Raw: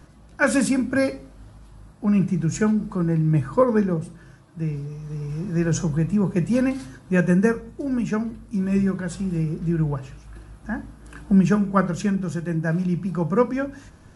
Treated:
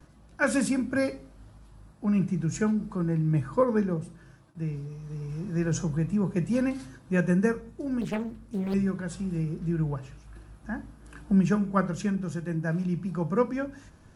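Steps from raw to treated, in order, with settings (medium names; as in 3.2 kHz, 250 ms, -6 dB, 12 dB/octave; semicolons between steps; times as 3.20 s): gate with hold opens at -43 dBFS; 8.01–8.74 s: loudspeaker Doppler distortion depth 0.84 ms; trim -5.5 dB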